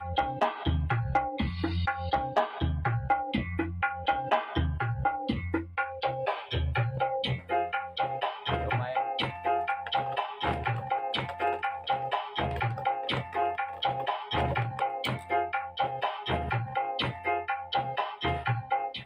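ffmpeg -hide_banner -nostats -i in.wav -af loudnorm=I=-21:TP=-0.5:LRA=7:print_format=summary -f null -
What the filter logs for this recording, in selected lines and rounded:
Input Integrated:    -30.7 LUFS
Input True Peak:     -13.6 dBTP
Input LRA:             1.3 LU
Input Threshold:     -40.7 LUFS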